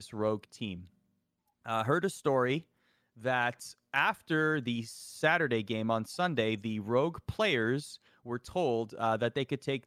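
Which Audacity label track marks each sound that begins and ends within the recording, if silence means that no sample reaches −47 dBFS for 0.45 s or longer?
1.660000	2.620000	sound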